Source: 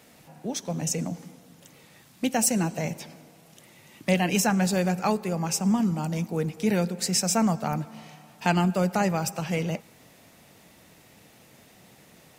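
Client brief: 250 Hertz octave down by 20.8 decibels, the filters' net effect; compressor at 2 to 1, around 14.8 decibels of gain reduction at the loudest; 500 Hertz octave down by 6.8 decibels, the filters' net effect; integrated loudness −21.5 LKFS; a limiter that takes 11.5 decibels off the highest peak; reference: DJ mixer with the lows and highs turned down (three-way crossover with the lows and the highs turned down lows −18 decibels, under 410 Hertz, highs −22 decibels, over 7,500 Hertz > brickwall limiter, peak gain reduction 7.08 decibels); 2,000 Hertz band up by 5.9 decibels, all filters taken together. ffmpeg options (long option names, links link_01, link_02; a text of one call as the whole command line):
ffmpeg -i in.wav -filter_complex "[0:a]equalizer=frequency=250:width_type=o:gain=-9,equalizer=frequency=500:width_type=o:gain=-4,equalizer=frequency=2000:width_type=o:gain=8,acompressor=threshold=-47dB:ratio=2,alimiter=level_in=8.5dB:limit=-24dB:level=0:latency=1,volume=-8.5dB,acrossover=split=410 7500:gain=0.126 1 0.0794[link_01][link_02][link_03];[link_01][link_02][link_03]amix=inputs=3:normalize=0,volume=28dB,alimiter=limit=-10dB:level=0:latency=1" out.wav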